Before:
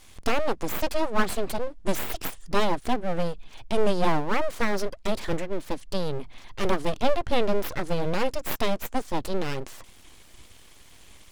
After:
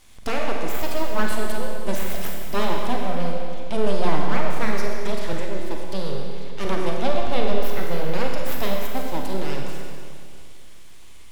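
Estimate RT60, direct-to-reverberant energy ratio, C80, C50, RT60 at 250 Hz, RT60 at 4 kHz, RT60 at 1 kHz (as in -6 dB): 2.3 s, -0.5 dB, 2.0 dB, 1.0 dB, 2.3 s, 2.2 s, 2.3 s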